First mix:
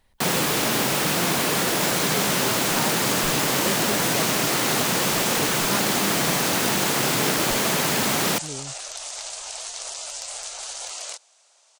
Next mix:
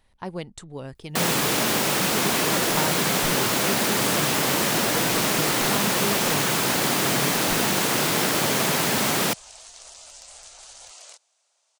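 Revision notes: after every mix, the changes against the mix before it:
first sound: entry +0.95 s; second sound -11.0 dB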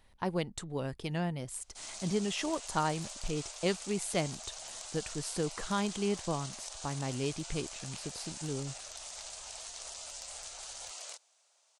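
first sound: muted

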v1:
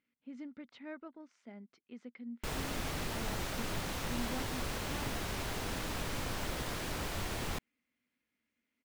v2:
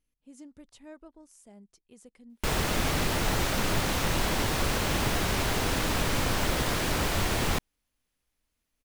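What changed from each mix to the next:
speech: remove speaker cabinet 180–4200 Hz, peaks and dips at 240 Hz +9 dB, 1400 Hz +8 dB, 2100 Hz +10 dB; background +10.5 dB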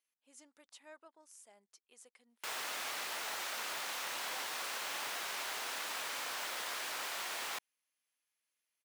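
background -8.5 dB; master: add HPF 860 Hz 12 dB/oct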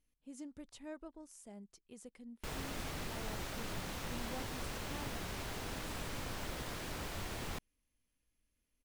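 background -6.5 dB; master: remove HPF 860 Hz 12 dB/oct

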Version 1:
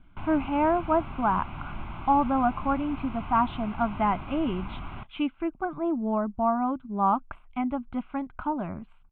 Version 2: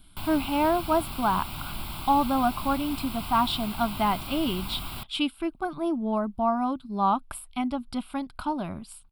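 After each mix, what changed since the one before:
master: remove inverse Chebyshev low-pass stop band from 4600 Hz, stop band 40 dB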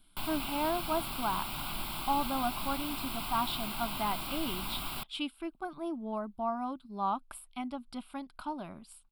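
speech -8.0 dB; master: add bell 70 Hz -11.5 dB 2 oct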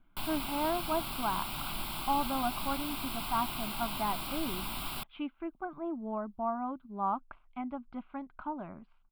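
speech: add LPF 2100 Hz 24 dB/oct

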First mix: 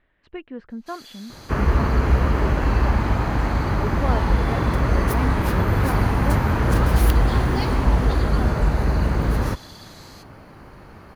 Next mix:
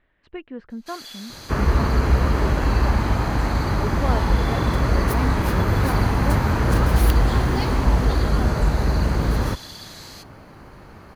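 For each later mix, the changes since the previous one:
first sound +6.0 dB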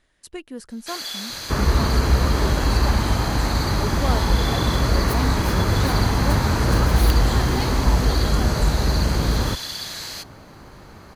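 speech: remove LPF 2700 Hz 24 dB/oct; first sound +9.0 dB

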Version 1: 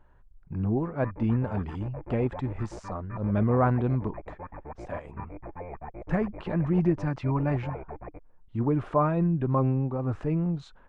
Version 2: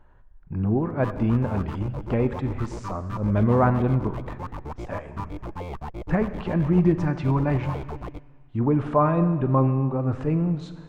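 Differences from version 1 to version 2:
background: remove rippled Chebyshev low-pass 2500 Hz, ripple 9 dB; reverb: on, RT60 1.8 s

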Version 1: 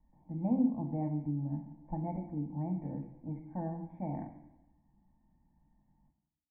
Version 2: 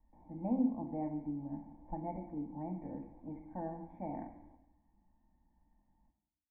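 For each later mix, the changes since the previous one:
background +7.5 dB; master: add bell 140 Hz -13 dB 0.84 oct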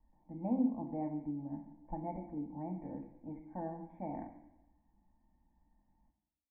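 background -11.5 dB

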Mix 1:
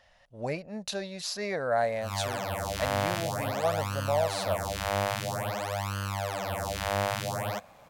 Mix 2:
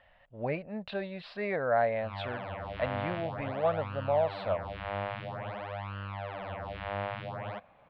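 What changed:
background -6.0 dB; master: add inverse Chebyshev low-pass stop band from 6000 Hz, stop band 40 dB

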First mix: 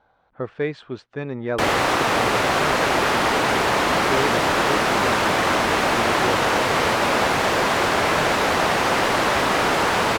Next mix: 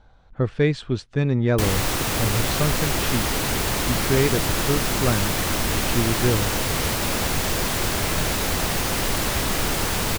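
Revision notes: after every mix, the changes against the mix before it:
background -10.0 dB; master: remove band-pass 930 Hz, Q 0.63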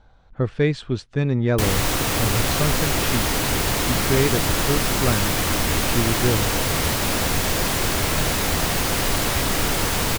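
reverb: on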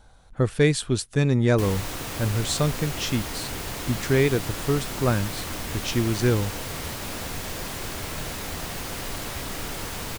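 speech: remove air absorption 180 m; background -11.0 dB

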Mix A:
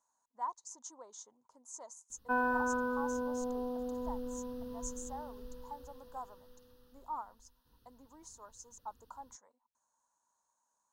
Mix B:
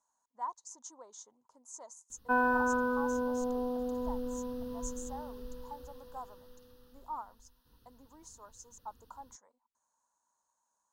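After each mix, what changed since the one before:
background +3.5 dB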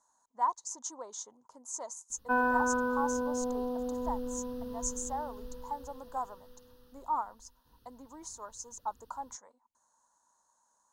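speech +8.5 dB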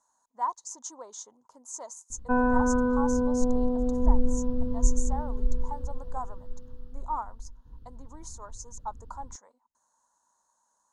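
background: add tilt -4.5 dB/oct

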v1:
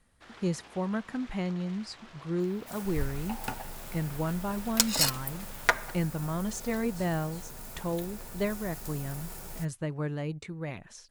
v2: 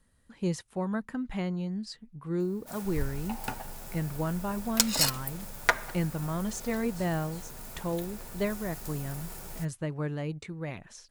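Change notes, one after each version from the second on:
first sound: muted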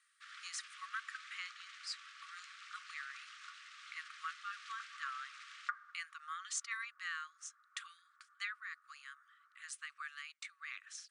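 first sound: unmuted; second sound: add Gaussian blur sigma 8.3 samples; master: add brick-wall FIR band-pass 1100–10000 Hz

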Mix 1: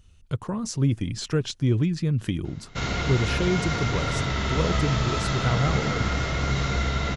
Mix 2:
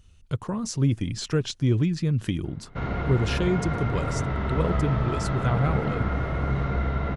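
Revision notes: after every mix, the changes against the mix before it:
background: add LPF 1400 Hz 12 dB/oct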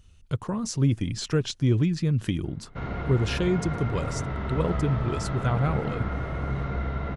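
background -3.5 dB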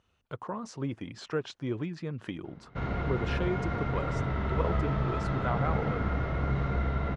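speech: add band-pass 900 Hz, Q 0.83

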